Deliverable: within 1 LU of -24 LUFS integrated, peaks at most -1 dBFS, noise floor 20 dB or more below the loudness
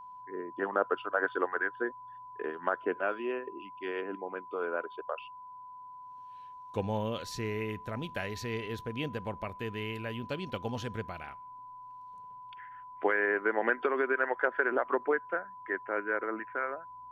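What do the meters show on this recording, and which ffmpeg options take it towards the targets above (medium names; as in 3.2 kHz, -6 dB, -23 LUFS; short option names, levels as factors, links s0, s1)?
steady tone 1 kHz; tone level -45 dBFS; loudness -33.5 LUFS; peak level -13.5 dBFS; loudness target -24.0 LUFS
-> -af "bandreject=f=1000:w=30"
-af "volume=2.99"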